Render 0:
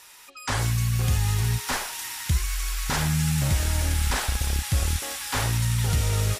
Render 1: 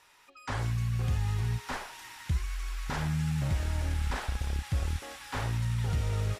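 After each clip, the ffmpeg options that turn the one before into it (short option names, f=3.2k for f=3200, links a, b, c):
-af "lowpass=f=2k:p=1,volume=-6dB"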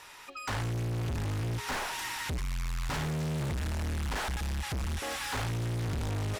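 -filter_complex "[0:a]asplit=2[a][b];[b]acompressor=threshold=-38dB:ratio=6,volume=0dB[c];[a][c]amix=inputs=2:normalize=0,asoftclip=type=hard:threshold=-36dB,volume=5dB"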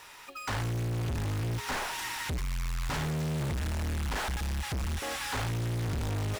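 -af "acrusher=bits=3:mode=log:mix=0:aa=0.000001"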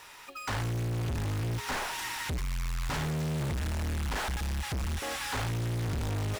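-af anull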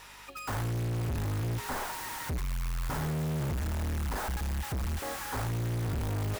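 -filter_complex "[0:a]acrossover=split=1800[a][b];[b]aeval=exprs='(mod(70.8*val(0)+1,2)-1)/70.8':c=same[c];[a][c]amix=inputs=2:normalize=0,aeval=exprs='val(0)+0.001*(sin(2*PI*50*n/s)+sin(2*PI*2*50*n/s)/2+sin(2*PI*3*50*n/s)/3+sin(2*PI*4*50*n/s)/4+sin(2*PI*5*50*n/s)/5)':c=same"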